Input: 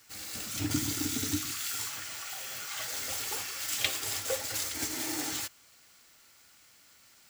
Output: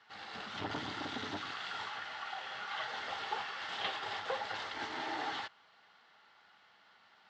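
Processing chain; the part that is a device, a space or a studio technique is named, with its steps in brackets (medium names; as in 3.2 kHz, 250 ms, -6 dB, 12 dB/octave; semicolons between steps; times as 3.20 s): guitar amplifier (valve stage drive 33 dB, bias 0.75; tone controls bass -14 dB, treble -5 dB; cabinet simulation 86–3500 Hz, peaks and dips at 190 Hz +5 dB, 300 Hz -9 dB, 540 Hz -6 dB, 830 Hz +6 dB, 2.4 kHz -10 dB); trim +8 dB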